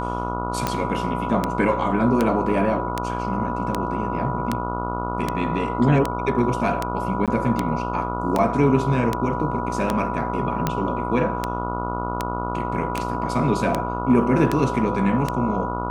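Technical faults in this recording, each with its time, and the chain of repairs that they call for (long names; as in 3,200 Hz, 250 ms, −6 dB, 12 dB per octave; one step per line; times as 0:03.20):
mains buzz 60 Hz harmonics 24 −28 dBFS
scratch tick 78 rpm −7 dBFS
whistle 980 Hz −28 dBFS
0:07.26–0:07.28: drop-out 17 ms
0:08.38–0:08.39: drop-out 6.6 ms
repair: click removal
hum removal 60 Hz, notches 24
notch filter 980 Hz, Q 30
repair the gap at 0:07.26, 17 ms
repair the gap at 0:08.38, 6.6 ms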